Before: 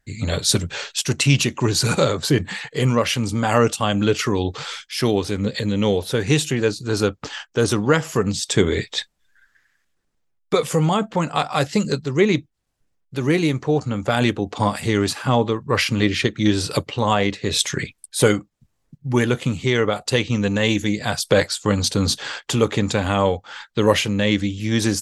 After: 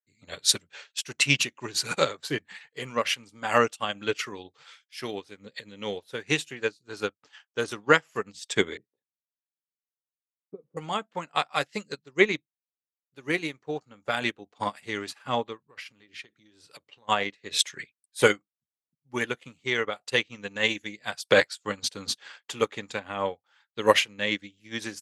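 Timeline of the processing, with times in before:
0:08.77–0:10.77: flat-topped band-pass 200 Hz, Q 0.81
0:15.69–0:17.09: downward compressor 10 to 1, threshold −23 dBFS
0:22.99–0:23.46: high-shelf EQ 3,300 Hz −10 dB
whole clip: high-pass filter 380 Hz 6 dB per octave; dynamic equaliser 2,100 Hz, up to +6 dB, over −38 dBFS, Q 0.93; expander for the loud parts 2.5 to 1, over −32 dBFS

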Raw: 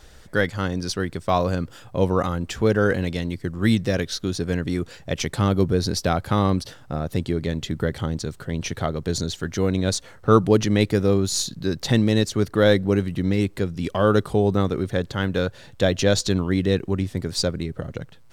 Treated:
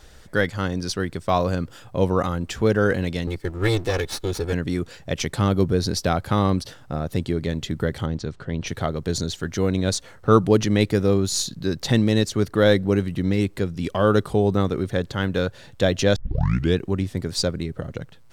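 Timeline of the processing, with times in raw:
0:03.27–0:04.53: lower of the sound and its delayed copy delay 2.3 ms
0:08.06–0:08.67: high-frequency loss of the air 110 metres
0:16.16: tape start 0.61 s

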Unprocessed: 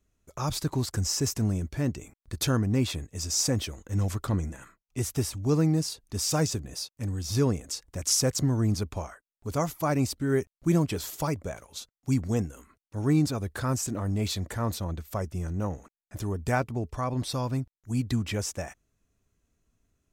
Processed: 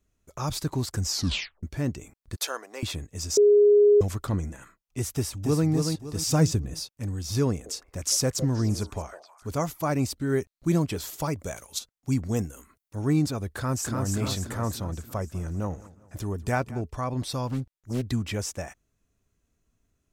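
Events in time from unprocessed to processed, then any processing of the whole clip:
0:01.08: tape stop 0.55 s
0:02.36–0:02.83: high-pass filter 520 Hz 24 dB per octave
0:03.37–0:04.01: beep over 413 Hz −13.5 dBFS
0:05.15–0:05.67: delay throw 280 ms, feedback 35%, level −5 dB
0:06.27–0:06.91: low-shelf EQ 260 Hz +9 dB
0:07.50–0:09.61: echo through a band-pass that steps 157 ms, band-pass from 510 Hz, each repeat 1.4 octaves, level −8 dB
0:10.19–0:10.82: parametric band 4,100 Hz +9 dB 0.22 octaves
0:11.39–0:11.79: high-shelf EQ 3,500 Hz +12 dB
0:12.34–0:12.96: high-shelf EQ 7,700 Hz +10 dB
0:13.55–0:14.06: delay throw 290 ms, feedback 55%, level −3 dB
0:15.04–0:16.82: repeating echo 196 ms, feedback 40%, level −20 dB
0:17.47–0:18.05: highs frequency-modulated by the lows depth 0.78 ms

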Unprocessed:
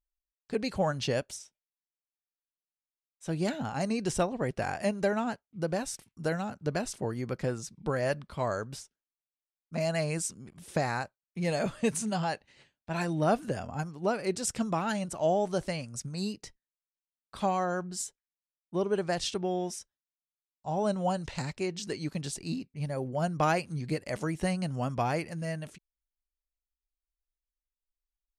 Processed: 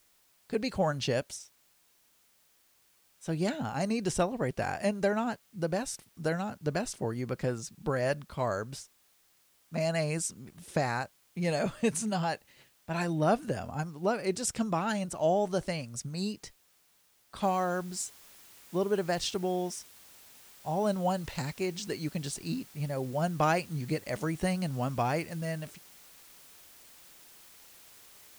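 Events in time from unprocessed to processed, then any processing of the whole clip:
0:17.43: noise floor change −67 dB −55 dB

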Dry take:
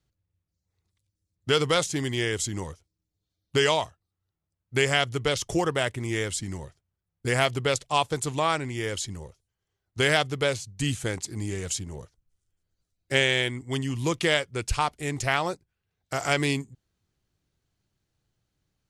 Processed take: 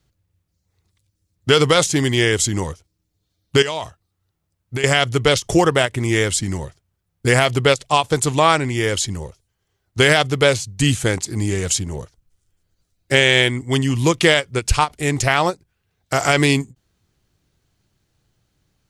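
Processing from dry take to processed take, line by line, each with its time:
0:03.62–0:04.84: downward compressor 12 to 1, threshold −30 dBFS
whole clip: boost into a limiter +11.5 dB; every ending faded ahead of time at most 460 dB per second; level −1 dB

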